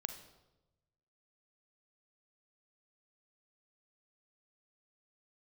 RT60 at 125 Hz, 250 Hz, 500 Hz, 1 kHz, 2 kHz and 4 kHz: 1.6 s, 1.2 s, 1.1 s, 0.90 s, 0.75 s, 0.75 s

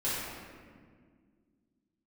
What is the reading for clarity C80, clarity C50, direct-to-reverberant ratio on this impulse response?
0.0 dB, -3.0 dB, -11.0 dB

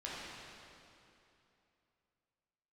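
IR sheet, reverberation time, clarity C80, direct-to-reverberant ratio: 2.9 s, -1.5 dB, -7.5 dB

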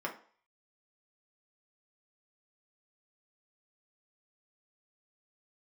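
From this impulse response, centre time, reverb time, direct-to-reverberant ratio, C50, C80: 15 ms, 0.45 s, -1.0 dB, 11.5 dB, 16.0 dB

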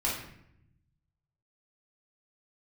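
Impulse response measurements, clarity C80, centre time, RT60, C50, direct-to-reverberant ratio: 7.0 dB, 46 ms, 0.75 s, 2.5 dB, -6.0 dB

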